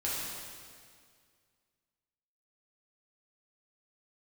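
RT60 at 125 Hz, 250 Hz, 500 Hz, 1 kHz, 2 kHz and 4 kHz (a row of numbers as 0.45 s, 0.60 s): 2.2 s, 2.2 s, 2.1 s, 2.0 s, 1.9 s, 1.9 s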